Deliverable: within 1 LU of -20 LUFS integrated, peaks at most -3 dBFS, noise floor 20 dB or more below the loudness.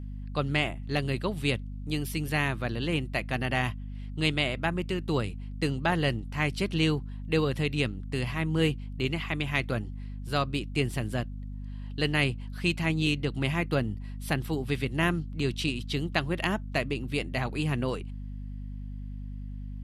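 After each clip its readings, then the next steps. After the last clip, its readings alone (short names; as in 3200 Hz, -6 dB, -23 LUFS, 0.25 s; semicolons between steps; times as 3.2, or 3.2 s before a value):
hum 50 Hz; harmonics up to 250 Hz; hum level -35 dBFS; loudness -29.5 LUFS; peak -9.5 dBFS; loudness target -20.0 LUFS
-> notches 50/100/150/200/250 Hz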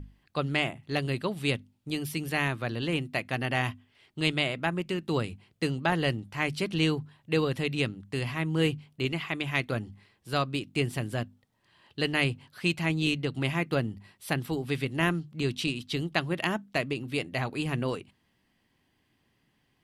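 hum none; loudness -30.0 LUFS; peak -9.5 dBFS; loudness target -20.0 LUFS
-> gain +10 dB; limiter -3 dBFS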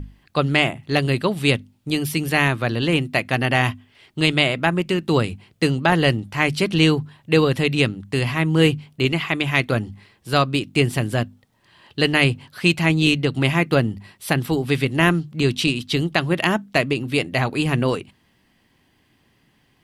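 loudness -20.5 LUFS; peak -3.0 dBFS; noise floor -62 dBFS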